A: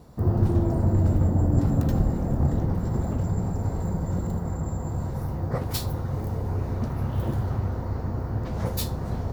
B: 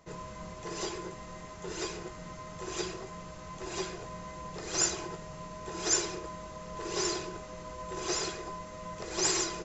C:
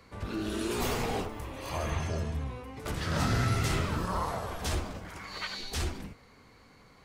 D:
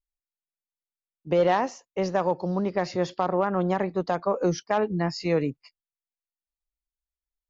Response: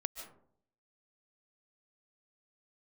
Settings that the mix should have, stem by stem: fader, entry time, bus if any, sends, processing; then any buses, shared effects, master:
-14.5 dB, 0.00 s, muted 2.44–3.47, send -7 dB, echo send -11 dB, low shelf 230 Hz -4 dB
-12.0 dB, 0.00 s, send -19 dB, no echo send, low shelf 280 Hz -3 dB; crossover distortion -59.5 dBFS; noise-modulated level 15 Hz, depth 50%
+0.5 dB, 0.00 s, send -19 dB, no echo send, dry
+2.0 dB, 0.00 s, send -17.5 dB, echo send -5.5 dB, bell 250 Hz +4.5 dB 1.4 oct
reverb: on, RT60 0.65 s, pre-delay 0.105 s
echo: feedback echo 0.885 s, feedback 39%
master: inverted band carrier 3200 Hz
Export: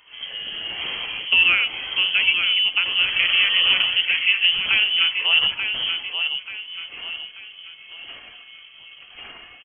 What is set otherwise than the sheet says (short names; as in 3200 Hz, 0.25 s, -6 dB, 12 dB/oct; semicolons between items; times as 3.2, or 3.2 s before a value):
stem A -14.5 dB -> -21.5 dB; stem B -12.0 dB -> -3.5 dB